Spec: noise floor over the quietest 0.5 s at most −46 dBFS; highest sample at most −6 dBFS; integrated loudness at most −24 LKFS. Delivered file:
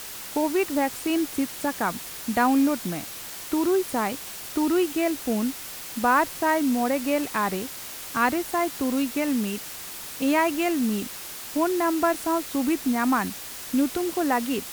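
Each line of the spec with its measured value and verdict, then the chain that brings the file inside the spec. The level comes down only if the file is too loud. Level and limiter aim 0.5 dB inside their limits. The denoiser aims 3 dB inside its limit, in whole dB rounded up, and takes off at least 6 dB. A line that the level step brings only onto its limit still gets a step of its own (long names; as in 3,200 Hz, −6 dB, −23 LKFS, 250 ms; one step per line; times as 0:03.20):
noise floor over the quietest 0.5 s −38 dBFS: out of spec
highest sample −8.5 dBFS: in spec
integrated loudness −25.5 LKFS: in spec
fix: broadband denoise 11 dB, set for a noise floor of −38 dBFS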